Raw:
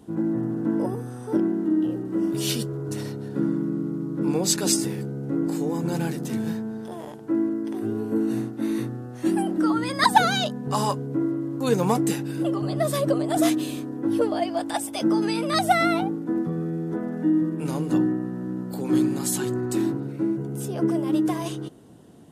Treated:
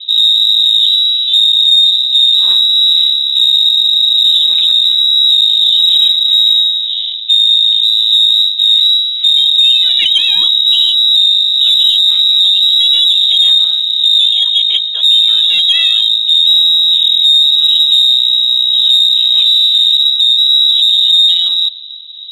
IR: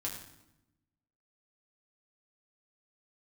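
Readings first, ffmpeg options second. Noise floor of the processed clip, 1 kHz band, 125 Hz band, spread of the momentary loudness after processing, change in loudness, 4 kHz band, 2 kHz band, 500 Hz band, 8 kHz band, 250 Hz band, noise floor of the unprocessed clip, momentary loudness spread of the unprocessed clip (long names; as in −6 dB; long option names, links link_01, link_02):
−18 dBFS, below −15 dB, below −30 dB, 3 LU, +18.5 dB, +33.0 dB, +3.5 dB, below −25 dB, can't be measured, below −30 dB, −37 dBFS, 8 LU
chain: -af "aemphasis=mode=reproduction:type=bsi,lowpass=frequency=3400:width_type=q:width=0.5098,lowpass=frequency=3400:width_type=q:width=0.6013,lowpass=frequency=3400:width_type=q:width=0.9,lowpass=frequency=3400:width_type=q:width=2.563,afreqshift=-4000,aexciter=amount=4.9:drive=5.7:freq=3100,tremolo=f=1.7:d=0.3,alimiter=level_in=5dB:limit=-1dB:release=50:level=0:latency=1,volume=-1dB"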